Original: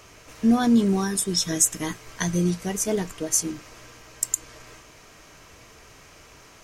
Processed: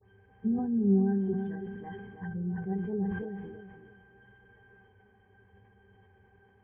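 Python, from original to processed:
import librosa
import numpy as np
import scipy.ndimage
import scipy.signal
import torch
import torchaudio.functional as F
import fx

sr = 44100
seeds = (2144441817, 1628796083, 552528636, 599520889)

p1 = fx.spec_delay(x, sr, highs='late', ms=125)
p2 = scipy.signal.sosfilt(scipy.signal.butter(12, 2900.0, 'lowpass', fs=sr, output='sos'), p1)
p3 = fx.env_lowpass_down(p2, sr, base_hz=500.0, full_db=-20.0)
p4 = fx.octave_resonator(p3, sr, note='G', decay_s=0.13)
p5 = p4 + fx.echo_tape(p4, sr, ms=324, feedback_pct=35, wet_db=-7.5, lp_hz=1700.0, drive_db=13.0, wow_cents=38, dry=0)
y = fx.sustainer(p5, sr, db_per_s=38.0)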